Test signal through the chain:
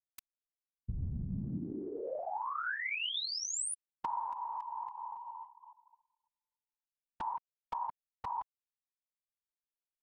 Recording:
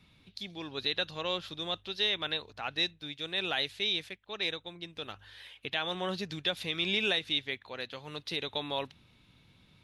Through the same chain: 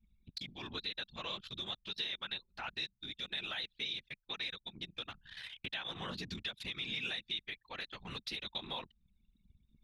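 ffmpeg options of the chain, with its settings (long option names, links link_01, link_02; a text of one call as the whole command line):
ffmpeg -i in.wav -af "equalizer=frequency=450:width=0.92:gain=-11.5,acompressor=threshold=-47dB:ratio=3,afftfilt=real='hypot(re,im)*cos(2*PI*random(0))':imag='hypot(re,im)*sin(2*PI*random(1))':win_size=512:overlap=0.75,anlmdn=0.0001,volume=11.5dB" out.wav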